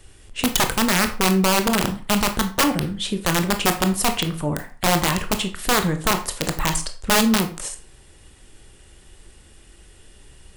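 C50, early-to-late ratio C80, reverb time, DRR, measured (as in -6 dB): 12.0 dB, 16.5 dB, 0.40 s, 6.5 dB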